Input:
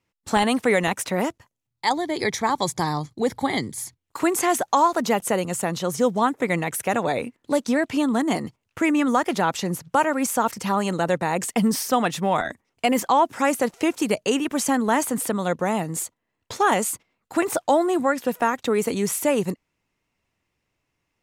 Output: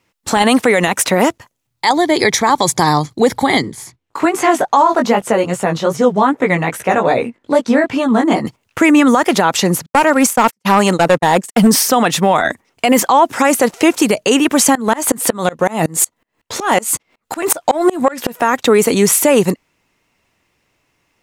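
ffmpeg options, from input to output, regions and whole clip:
ffmpeg -i in.wav -filter_complex "[0:a]asettb=1/sr,asplit=3[link_01][link_02][link_03];[link_01]atrim=end=3.624[link_04];[link_02]atrim=start=3.62:end=8.45,asetpts=PTS-STARTPTS,afade=type=in:duration=0.004:curve=qsin,afade=type=out:start_time=4.826:duration=0.004:curve=qsin,lowpass=frequency=2400:poles=1,flanger=delay=15:depth=4.9:speed=2.5[link_05];[link_03]atrim=start=8.446[link_06];[link_04][link_05]acrossfade=duration=0.004:curve1=hsin:curve2=qsin[link_07];[link_07][link_06]acrossfade=duration=0.004:curve1=qsin:curve2=hsin,asettb=1/sr,asplit=3[link_08][link_09][link_10];[link_08]atrim=end=9.864[link_11];[link_09]atrim=start=9.86:end=11.67,asetpts=PTS-STARTPTS,afade=type=in:duration=0.004:curve=qsin,afade=type=out:start_time=1.806:duration=0.004:curve=qsin,agate=range=-51dB:threshold=-27dB:ratio=16:release=100:detection=peak,aeval=exprs='clip(val(0),-1,0.133)':channel_layout=same[link_12];[link_10]atrim=start=11.666[link_13];[link_11][link_12]acrossfade=duration=0.004:curve1=hsin:curve2=qsin[link_14];[link_14][link_13]acrossfade=duration=0.004:curve1=qsin:curve2=hsin,asettb=1/sr,asplit=3[link_15][link_16][link_17];[link_15]atrim=end=14.754[link_18];[link_16]atrim=start=14.75:end=18.42,asetpts=PTS-STARTPTS,afade=type=in:duration=0.004:curve=qsin,afade=type=out:start_time=3.666:duration=0.004:curve=qsin,acontrast=78,asplit=2[link_19][link_20];[link_20]adelay=13,volume=-13dB[link_21];[link_19][link_21]amix=inputs=2:normalize=0,atrim=end_sample=161847,aeval=exprs='val(0)*pow(10,-30*if(lt(mod(-5.4*n/s,1),2*abs(-5.4)/1000),1-mod(-5.4*n/s,1)/(2*abs(-5.4)/1000),(mod(-5.4*n/s,1)-2*abs(-5.4)/1000)/(1-2*abs(-5.4)/1000))/20)':channel_layout=same[link_22];[link_17]atrim=start=18.416[link_23];[link_18][link_22]acrossfade=duration=0.004:curve1=hsin:curve2=qsin[link_24];[link_24][link_23]acrossfade=duration=0.004:curve1=qsin:curve2=hsin,lowshelf=frequency=180:gain=-6.5,alimiter=level_in=15dB:limit=-1dB:release=50:level=0:latency=1,volume=-1dB" out.wav

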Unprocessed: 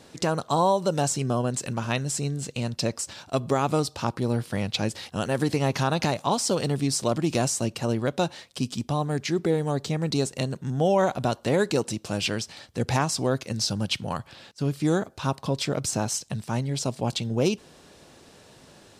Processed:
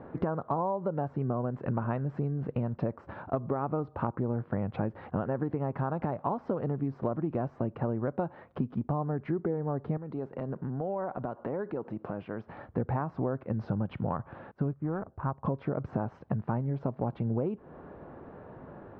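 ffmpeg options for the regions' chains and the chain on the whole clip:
ffmpeg -i in.wav -filter_complex "[0:a]asettb=1/sr,asplit=3[link_01][link_02][link_03];[link_01]atrim=end=9.974[link_04];[link_02]atrim=start=9.97:end=12.49,asetpts=PTS-STARTPTS,afade=type=in:duration=0.004:curve=qsin,afade=type=out:start_time=2.516:duration=0.004:curve=qsin,highpass=frequency=190:poles=1,acompressor=threshold=-37dB:ratio=5:attack=3.2:release=140:knee=1:detection=peak[link_05];[link_03]atrim=start=12.486[link_06];[link_04][link_05]acrossfade=duration=0.004:curve1=hsin:curve2=qsin[link_07];[link_07][link_06]acrossfade=duration=0.004:curve1=qsin:curve2=hsin,asettb=1/sr,asplit=3[link_08][link_09][link_10];[link_08]atrim=end=14.734[link_11];[link_09]atrim=start=14.73:end=15.45,asetpts=PTS-STARTPTS,afade=type=in:duration=0.004:curve=qsin,afade=type=out:start_time=0.716:duration=0.004:curve=qsin,equalizer=frequency=330:width_type=o:width=2.9:gain=-11,adynamicsmooth=sensitivity=2.5:basefreq=730[link_12];[link_10]atrim=start=15.446[link_13];[link_11][link_12]acrossfade=duration=0.004:curve1=hsin:curve2=qsin[link_14];[link_14][link_13]acrossfade=duration=0.004:curve1=qsin:curve2=hsin,lowpass=frequency=1400:width=0.5412,lowpass=frequency=1400:width=1.3066,acompressor=threshold=-33dB:ratio=12,volume=6dB" out.wav

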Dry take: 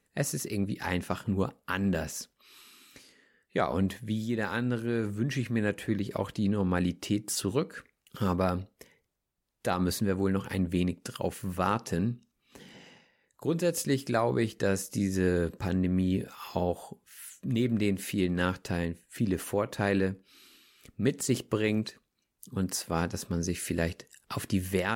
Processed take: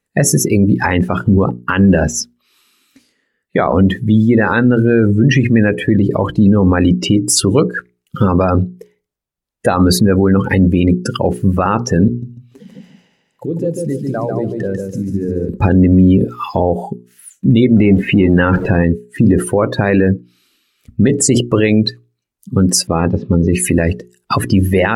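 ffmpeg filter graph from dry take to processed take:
ffmpeg -i in.wav -filter_complex "[0:a]asettb=1/sr,asplit=3[link_01][link_02][link_03];[link_01]atrim=end=12.084[link_04];[link_02]atrim=start=12.08:end=15.49,asetpts=PTS-STARTPTS,afade=type=in:duration=0.004:curve=qsin,afade=type=out:start_time=3.406:duration=0.004:curve=qsin,acompressor=threshold=-43dB:ratio=3:attack=3.2:release=140:knee=1:detection=peak,aecho=1:1:145|290|435|580|725|870:0.708|0.333|0.156|0.0735|0.0345|0.0162,atrim=end_sample=150381[link_05];[link_03]atrim=start=15.486[link_06];[link_04][link_05]acrossfade=duration=0.004:curve1=hsin:curve2=qsin[link_07];[link_07][link_06]acrossfade=duration=0.004:curve1=qsin:curve2=hsin,asettb=1/sr,asplit=3[link_08][link_09][link_10];[link_08]atrim=end=17.764[link_11];[link_09]atrim=start=17.76:end=18.84,asetpts=PTS-STARTPTS,afade=type=in:duration=0.004:curve=qsin,afade=type=out:start_time=1.076:duration=0.004:curve=qsin,aeval=exprs='val(0)+0.5*0.0158*sgn(val(0))':channel_layout=same,acrossover=split=3000[link_12][link_13];[link_13]acompressor=threshold=-51dB:ratio=4:attack=1:release=60[link_14];[link_12][link_14]amix=inputs=2:normalize=0[link_15];[link_10]atrim=start=18.836[link_16];[link_11][link_15]acrossfade=duration=0.004:curve1=hsin:curve2=qsin[link_17];[link_17][link_16]acrossfade=duration=0.004:curve1=qsin:curve2=hsin,asettb=1/sr,asplit=3[link_18][link_19][link_20];[link_18]atrim=end=22.874[link_21];[link_19]atrim=start=22.87:end=23.53,asetpts=PTS-STARTPTS,afade=type=in:duration=0.004:curve=qsin,afade=type=out:start_time=0.656:duration=0.004:curve=qsin,acrusher=bits=6:mode=log:mix=0:aa=0.000001,lowpass=frequency=4000:width=0.5412,lowpass=frequency=4000:width=1.3066,bandreject=frequency=1500:width=7.6[link_22];[link_20]atrim=start=23.526[link_23];[link_21][link_22]acrossfade=duration=0.004:curve1=hsin:curve2=qsin[link_24];[link_24][link_23]acrossfade=duration=0.004:curve1=qsin:curve2=hsin,afftdn=noise_reduction=25:noise_floor=-37,bandreject=frequency=60:width_type=h:width=6,bandreject=frequency=120:width_type=h:width=6,bandreject=frequency=180:width_type=h:width=6,bandreject=frequency=240:width_type=h:width=6,bandreject=frequency=300:width_type=h:width=6,bandreject=frequency=360:width_type=h:width=6,bandreject=frequency=420:width_type=h:width=6,alimiter=level_in=24.5dB:limit=-1dB:release=50:level=0:latency=1,volume=-1dB" out.wav

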